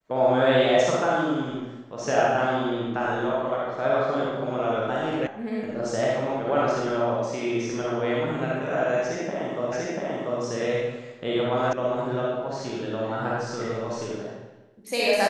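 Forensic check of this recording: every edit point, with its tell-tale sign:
5.27 s: sound stops dead
9.72 s: repeat of the last 0.69 s
11.73 s: sound stops dead

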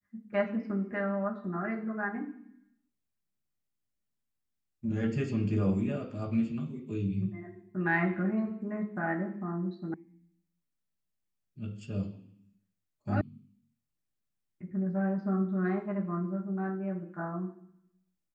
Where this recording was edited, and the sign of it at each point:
9.94 s: sound stops dead
13.21 s: sound stops dead

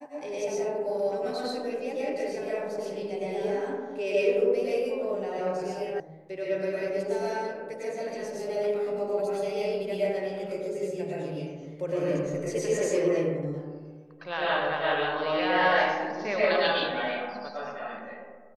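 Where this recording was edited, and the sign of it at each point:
6.00 s: sound stops dead

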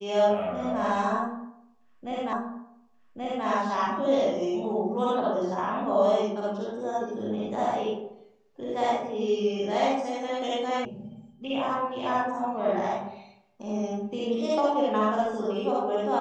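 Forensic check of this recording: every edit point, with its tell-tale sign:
2.33 s: repeat of the last 1.13 s
10.85 s: sound stops dead

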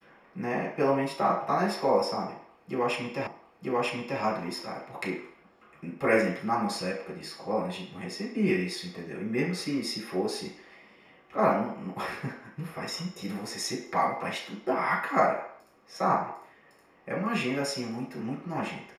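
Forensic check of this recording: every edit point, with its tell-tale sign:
3.27 s: repeat of the last 0.94 s

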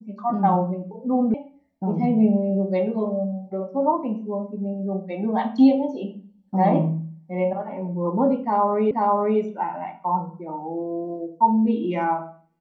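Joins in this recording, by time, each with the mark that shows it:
1.34 s: sound stops dead
8.91 s: repeat of the last 0.49 s

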